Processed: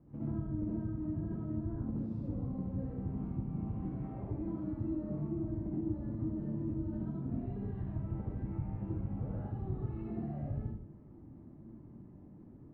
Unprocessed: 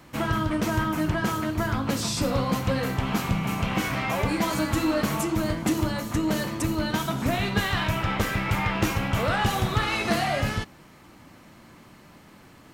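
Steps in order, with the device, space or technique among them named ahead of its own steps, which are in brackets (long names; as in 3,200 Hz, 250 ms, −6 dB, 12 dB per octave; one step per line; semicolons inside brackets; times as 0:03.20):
television next door (downward compressor, threshold −32 dBFS, peak gain reduction 13 dB; low-pass filter 310 Hz 12 dB per octave; convolution reverb RT60 0.65 s, pre-delay 59 ms, DRR −6.5 dB)
high-shelf EQ 6,400 Hz +4.5 dB
level −7 dB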